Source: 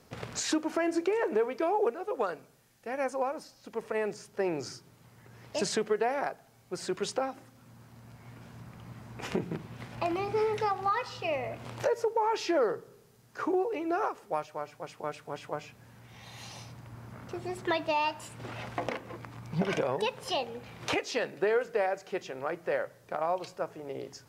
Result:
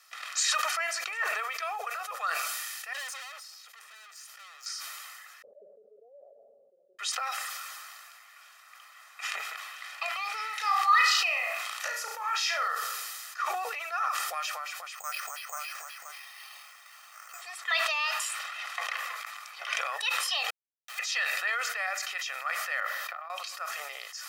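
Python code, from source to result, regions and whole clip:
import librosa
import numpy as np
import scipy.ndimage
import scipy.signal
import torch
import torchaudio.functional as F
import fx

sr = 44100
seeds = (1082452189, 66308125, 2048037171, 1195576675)

y = fx.chain(x, sr, fx.highpass(hz=350.0, slope=24),
    fx.tube_stage(drive_db=47.0, bias=0.55), at=(2.93, 4.66))
y = fx.chain(y, sr, fx.cheby_ripple(hz=580.0, ripple_db=3),
    fx.peak_eq(hz=240.0, db=7.0, octaves=0.89), at=(5.42, 6.99))
y = fx.chain(y, sr, fx.high_shelf(hz=8000.0, db=5.0),
    fx.room_flutter(wall_m=5.9, rt60_s=0.35), at=(10.49, 12.68))
y = fx.chain(y, sr, fx.high_shelf(hz=3300.0, db=-5.5),
    fx.echo_single(ms=528, db=-7.5),
    fx.resample_bad(factor=6, down='filtered', up='hold'), at=(14.95, 17.42))
y = fx.chain(y, sr, fx.schmitt(flips_db=-30.5),
    fx.auto_swell(attack_ms=140.0), at=(20.5, 20.99))
y = fx.chain(y, sr, fx.peak_eq(hz=8500.0, db=-14.0, octaves=1.5),
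    fx.over_compress(threshold_db=-41.0, ratio=-1.0), at=(22.8, 23.3))
y = scipy.signal.sosfilt(scipy.signal.butter(4, 1200.0, 'highpass', fs=sr, output='sos'), y)
y = y + 0.77 * np.pad(y, (int(1.6 * sr / 1000.0), 0))[:len(y)]
y = fx.sustainer(y, sr, db_per_s=23.0)
y = y * librosa.db_to_amplitude(4.0)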